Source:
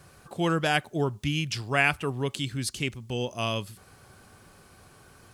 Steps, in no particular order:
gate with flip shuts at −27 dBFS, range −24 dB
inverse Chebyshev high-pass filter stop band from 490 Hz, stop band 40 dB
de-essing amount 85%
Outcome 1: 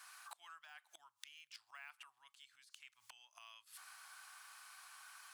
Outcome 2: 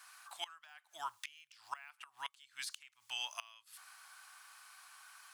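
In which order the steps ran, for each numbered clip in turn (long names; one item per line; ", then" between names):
de-essing, then gate with flip, then inverse Chebyshev high-pass filter
de-essing, then inverse Chebyshev high-pass filter, then gate with flip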